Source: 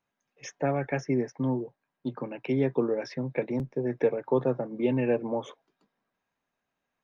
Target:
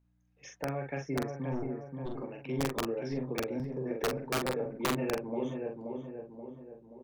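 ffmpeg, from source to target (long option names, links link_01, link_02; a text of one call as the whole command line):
ffmpeg -i in.wav -filter_complex "[0:a]asplit=3[link_01][link_02][link_03];[link_01]afade=type=out:start_time=1.52:duration=0.02[link_04];[link_02]aeval=exprs='0.1*(cos(1*acos(clip(val(0)/0.1,-1,1)))-cos(1*PI/2))+0.0251*(cos(4*acos(clip(val(0)/0.1,-1,1)))-cos(4*PI/2))+0.00562*(cos(8*acos(clip(val(0)/0.1,-1,1)))-cos(8*PI/2))':channel_layout=same,afade=type=in:start_time=1.52:duration=0.02,afade=type=out:start_time=2.07:duration=0.02[link_05];[link_03]afade=type=in:start_time=2.07:duration=0.02[link_06];[link_04][link_05][link_06]amix=inputs=3:normalize=0,asplit=2[link_07][link_08];[link_08]adelay=529,lowpass=frequency=1400:poles=1,volume=-4dB,asplit=2[link_09][link_10];[link_10]adelay=529,lowpass=frequency=1400:poles=1,volume=0.53,asplit=2[link_11][link_12];[link_12]adelay=529,lowpass=frequency=1400:poles=1,volume=0.53,asplit=2[link_13][link_14];[link_14]adelay=529,lowpass=frequency=1400:poles=1,volume=0.53,asplit=2[link_15][link_16];[link_16]adelay=529,lowpass=frequency=1400:poles=1,volume=0.53,asplit=2[link_17][link_18];[link_18]adelay=529,lowpass=frequency=1400:poles=1,volume=0.53,asplit=2[link_19][link_20];[link_20]adelay=529,lowpass=frequency=1400:poles=1,volume=0.53[link_21];[link_09][link_11][link_13][link_15][link_17][link_19][link_21]amix=inputs=7:normalize=0[link_22];[link_07][link_22]amix=inputs=2:normalize=0,aeval=exprs='val(0)+0.000891*(sin(2*PI*60*n/s)+sin(2*PI*2*60*n/s)/2+sin(2*PI*3*60*n/s)/3+sin(2*PI*4*60*n/s)/4+sin(2*PI*5*60*n/s)/5)':channel_layout=same,aeval=exprs='(mod(5.96*val(0)+1,2)-1)/5.96':channel_layout=same,asplit=2[link_23][link_24];[link_24]adelay=44,volume=-4.5dB[link_25];[link_23][link_25]amix=inputs=2:normalize=0,volume=-8.5dB" out.wav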